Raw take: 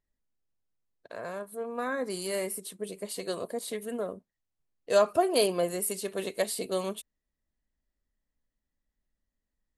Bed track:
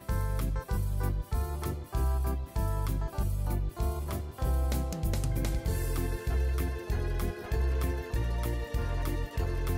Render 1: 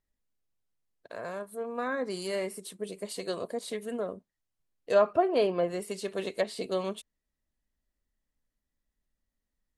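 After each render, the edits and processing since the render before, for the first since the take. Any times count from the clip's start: low-pass that closes with the level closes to 2.4 kHz, closed at -23.5 dBFS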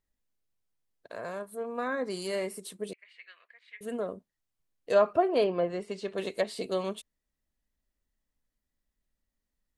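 2.93–3.81 s: Butterworth band-pass 2.1 kHz, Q 2.3; 5.44–6.18 s: distance through air 110 m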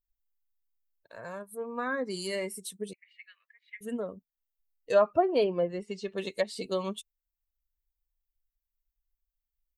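expander on every frequency bin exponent 1.5; in parallel at -1 dB: compression, threshold -37 dBFS, peak gain reduction 17 dB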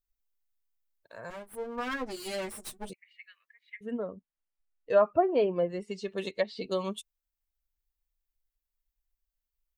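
1.30–2.90 s: comb filter that takes the minimum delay 8.4 ms; 3.76–5.56 s: low-pass 2.5 kHz; 6.31–6.71 s: low-pass 4.5 kHz 24 dB/octave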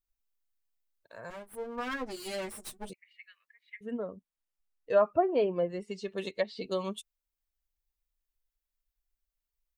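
trim -1.5 dB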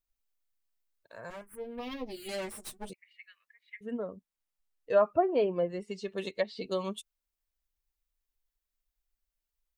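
1.41–2.29 s: touch-sensitive phaser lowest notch 580 Hz, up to 1.5 kHz, full sweep at -32.5 dBFS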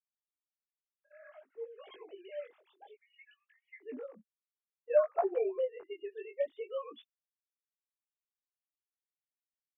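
formants replaced by sine waves; chorus 0.57 Hz, delay 17.5 ms, depth 5.3 ms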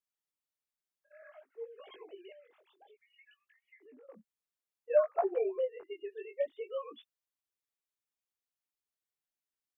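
1.22–1.80 s: high-pass 320 Hz; 2.32–4.09 s: compression 4:1, threshold -58 dBFS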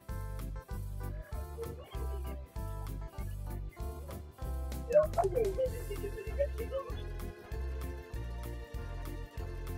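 add bed track -10 dB

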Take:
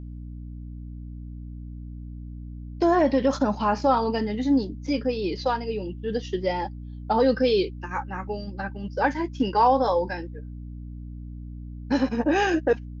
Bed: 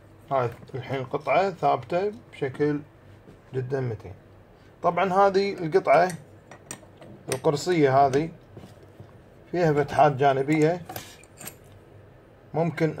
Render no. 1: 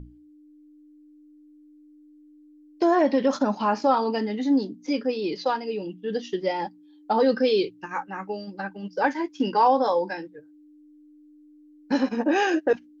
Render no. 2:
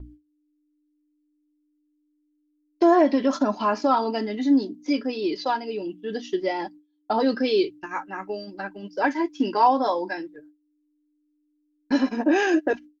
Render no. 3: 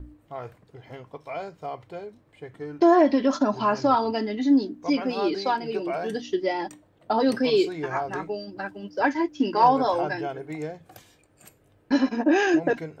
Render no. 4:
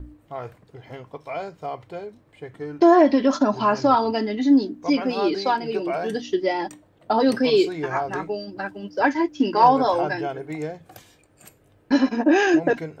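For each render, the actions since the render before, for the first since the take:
hum notches 60/120/180/240 Hz
gate with hold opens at -38 dBFS; comb 3 ms, depth 51%
add bed -12 dB
trim +3 dB

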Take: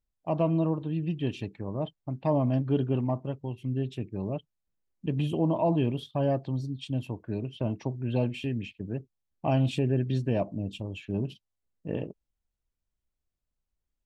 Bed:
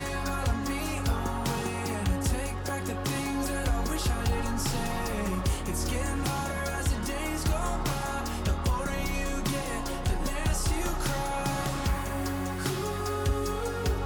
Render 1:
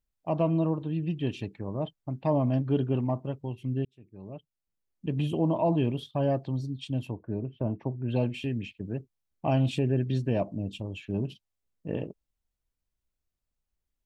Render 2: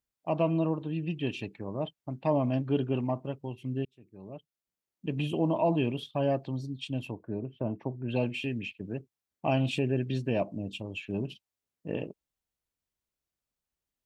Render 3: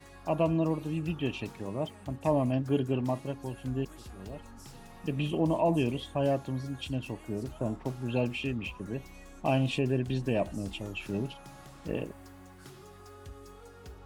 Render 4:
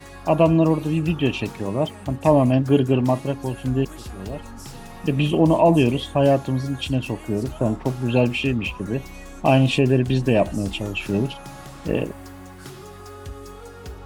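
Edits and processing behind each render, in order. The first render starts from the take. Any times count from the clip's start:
3.85–5.24 s: fade in; 7.11–8.07 s: low-pass 1.1 kHz -> 1.5 kHz
high-pass 170 Hz 6 dB/octave; dynamic bell 2.6 kHz, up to +6 dB, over -59 dBFS, Q 3.4
add bed -19.5 dB
trim +11 dB

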